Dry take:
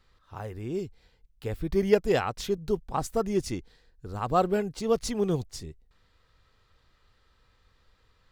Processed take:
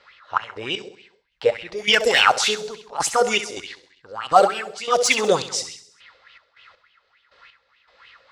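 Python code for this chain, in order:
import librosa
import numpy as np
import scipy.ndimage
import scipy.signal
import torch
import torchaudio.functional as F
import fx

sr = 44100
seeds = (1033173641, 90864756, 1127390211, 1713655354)

p1 = fx.pitch_heads(x, sr, semitones=1.0)
p2 = fx.weighting(p1, sr, curve='ITU-R 468')
p3 = fx.env_lowpass(p2, sr, base_hz=2600.0, full_db=-27.0)
p4 = fx.low_shelf(p3, sr, hz=150.0, db=4.5)
p5 = fx.over_compress(p4, sr, threshold_db=-34.0, ratio=-1.0)
p6 = p4 + (p5 * 10.0 ** (0.5 / 20.0))
p7 = fx.step_gate(p6, sr, bpm=80, pattern='xx.x...x..xxxx..', floor_db=-12.0, edge_ms=4.5)
p8 = np.clip(p7, -10.0 ** (-15.0 / 20.0), 10.0 ** (-15.0 / 20.0))
p9 = fx.echo_feedback(p8, sr, ms=66, feedback_pct=55, wet_db=-11)
p10 = fx.bell_lfo(p9, sr, hz=3.4, low_hz=490.0, high_hz=3000.0, db=17)
y = p10 * 10.0 ** (2.0 / 20.0)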